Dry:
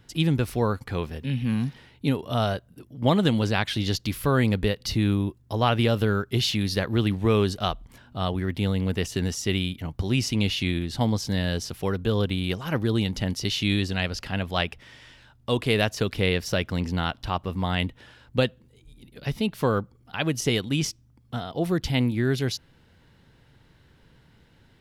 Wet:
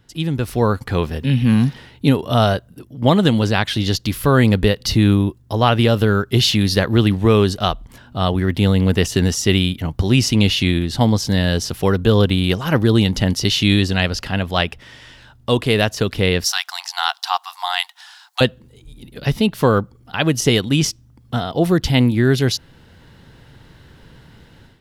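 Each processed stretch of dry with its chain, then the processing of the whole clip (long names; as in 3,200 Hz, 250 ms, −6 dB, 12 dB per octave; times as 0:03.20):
0:16.44–0:18.41: linear-phase brick-wall high-pass 690 Hz + high shelf with overshoot 3,500 Hz +6.5 dB, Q 1.5
whole clip: parametric band 2,300 Hz −3.5 dB 0.21 octaves; automatic gain control gain up to 12 dB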